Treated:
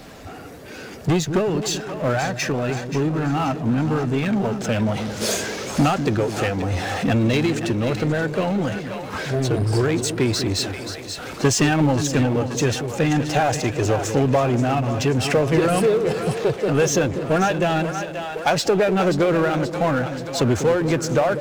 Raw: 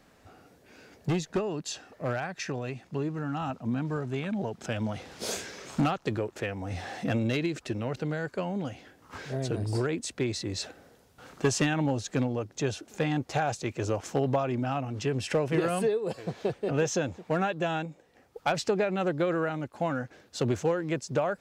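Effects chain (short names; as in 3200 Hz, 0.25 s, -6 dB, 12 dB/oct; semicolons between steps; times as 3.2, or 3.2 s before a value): bin magnitudes rounded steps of 15 dB; split-band echo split 530 Hz, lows 0.195 s, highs 0.53 s, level -11 dB; power-law curve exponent 0.7; gain +6.5 dB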